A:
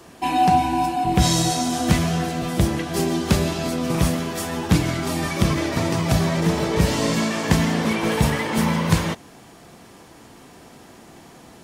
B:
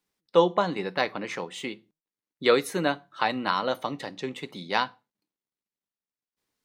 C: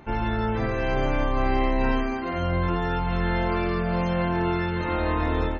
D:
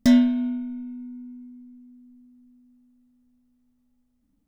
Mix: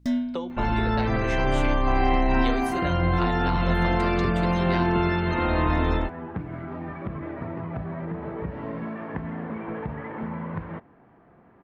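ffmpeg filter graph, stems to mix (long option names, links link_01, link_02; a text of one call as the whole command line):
ffmpeg -i stem1.wav -i stem2.wav -i stem3.wav -i stem4.wav -filter_complex "[0:a]lowpass=frequency=1800:width=0.5412,lowpass=frequency=1800:width=1.3066,acompressor=threshold=-19dB:ratio=6,adelay=1650,volume=-9dB[link_01];[1:a]acompressor=threshold=-27dB:ratio=10,volume=-2.5dB[link_02];[2:a]equalizer=frequency=480:width=6.2:gain=-6.5,asoftclip=type=tanh:threshold=-13dB,adelay=500,volume=2.5dB[link_03];[3:a]aeval=exprs='val(0)+0.00631*(sin(2*PI*60*n/s)+sin(2*PI*2*60*n/s)/2+sin(2*PI*3*60*n/s)/3+sin(2*PI*4*60*n/s)/4+sin(2*PI*5*60*n/s)/5)':channel_layout=same,highshelf=frequency=5400:gain=-8,volume=-9.5dB[link_04];[link_01][link_02][link_03][link_04]amix=inputs=4:normalize=0" out.wav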